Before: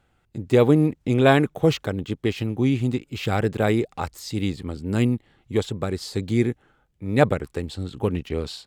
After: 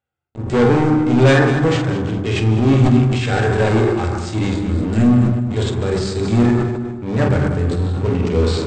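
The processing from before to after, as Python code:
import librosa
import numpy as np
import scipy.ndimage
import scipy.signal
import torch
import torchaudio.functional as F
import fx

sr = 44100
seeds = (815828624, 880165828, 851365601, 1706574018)

p1 = scipy.signal.sosfilt(scipy.signal.butter(2, 98.0, 'highpass', fs=sr, output='sos'), x)
p2 = fx.peak_eq(p1, sr, hz=210.0, db=-4.0, octaves=0.86)
p3 = fx.hum_notches(p2, sr, base_hz=50, count=8)
p4 = fx.hpss(p3, sr, part='percussive', gain_db=-14)
p5 = fx.dynamic_eq(p4, sr, hz=1700.0, q=4.3, threshold_db=-56.0, ratio=4.0, max_db=8)
p6 = fx.leveller(p5, sr, passes=5)
p7 = fx.brickwall_lowpass(p6, sr, high_hz=8700.0)
p8 = fx.doubler(p7, sr, ms=46.0, db=-7.5)
p9 = p8 + fx.echo_feedback(p8, sr, ms=202, feedback_pct=31, wet_db=-11, dry=0)
p10 = fx.rev_fdn(p9, sr, rt60_s=1.2, lf_ratio=1.45, hf_ratio=0.3, size_ms=74.0, drr_db=2.0)
p11 = fx.sustainer(p10, sr, db_per_s=37.0)
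y = p11 * librosa.db_to_amplitude(-6.5)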